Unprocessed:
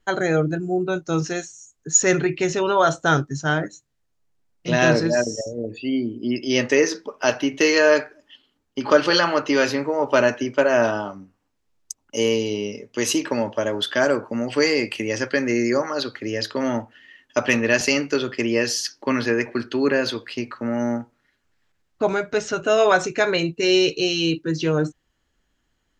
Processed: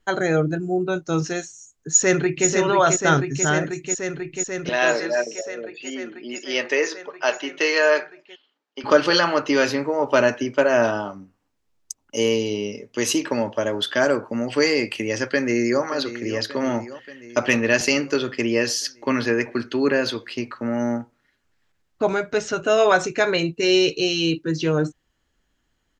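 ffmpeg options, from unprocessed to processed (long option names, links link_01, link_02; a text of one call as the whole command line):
ffmpeg -i in.wav -filter_complex "[0:a]asplit=2[link_01][link_02];[link_02]afade=type=in:start_time=1.88:duration=0.01,afade=type=out:start_time=2.47:duration=0.01,aecho=0:1:490|980|1470|1960|2450|2940|3430|3920|4410|4900|5390|5880:0.562341|0.47799|0.406292|0.345348|0.293546|0.249514|0.212087|0.180274|0.153233|0.130248|0.110711|0.094104[link_03];[link_01][link_03]amix=inputs=2:normalize=0,asettb=1/sr,asplit=3[link_04][link_05][link_06];[link_04]atrim=end=4.694[link_07];[link_05]atrim=start=4.69:end=8.84,asetpts=PTS-STARTPTS,afade=type=in:duration=0.004:curve=qsin,afade=type=out:start_time=4.146:duration=0.004:curve=qsin,highpass=500,lowpass=4700[link_08];[link_06]atrim=start=8.836[link_09];[link_07][link_08]acrossfade=duration=0.004:curve1=hsin:curve2=qsin[link_10];[link_10][link_09]acrossfade=duration=0.004:curve1=qsin:curve2=hsin,asplit=2[link_11][link_12];[link_12]afade=type=in:start_time=15.24:duration=0.01,afade=type=out:start_time=15.83:duration=0.01,aecho=0:1:580|1160|1740|2320|2900|3480|4060|4640:0.223872|0.145517|0.094586|0.0614809|0.0399626|0.0259757|0.0168842|0.0109747[link_13];[link_11][link_13]amix=inputs=2:normalize=0" out.wav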